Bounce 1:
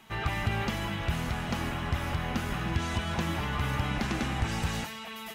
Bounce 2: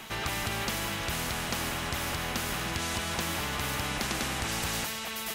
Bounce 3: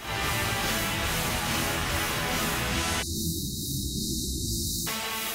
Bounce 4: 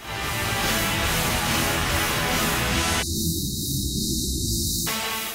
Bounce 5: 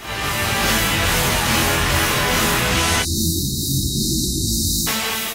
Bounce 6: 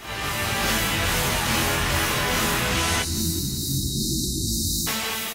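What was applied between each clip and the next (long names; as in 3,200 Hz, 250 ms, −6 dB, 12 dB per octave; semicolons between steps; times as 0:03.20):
every bin compressed towards the loudest bin 2 to 1
random phases in long frames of 200 ms; time-frequency box erased 0:03.02–0:04.87, 390–3,700 Hz; level +4.5 dB
automatic gain control gain up to 5 dB
double-tracking delay 22 ms −7 dB; level +4.5 dB
repeating echo 183 ms, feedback 59%, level −21 dB; level −5 dB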